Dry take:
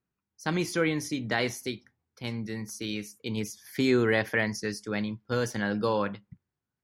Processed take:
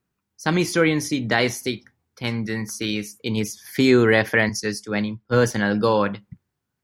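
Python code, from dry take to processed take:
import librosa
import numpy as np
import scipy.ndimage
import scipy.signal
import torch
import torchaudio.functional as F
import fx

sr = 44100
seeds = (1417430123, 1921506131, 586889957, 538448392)

y = fx.dynamic_eq(x, sr, hz=1500.0, q=1.2, threshold_db=-56.0, ratio=4.0, max_db=6, at=(1.72, 2.91))
y = fx.band_widen(y, sr, depth_pct=100, at=(4.49, 5.51))
y = F.gain(torch.from_numpy(y), 8.0).numpy()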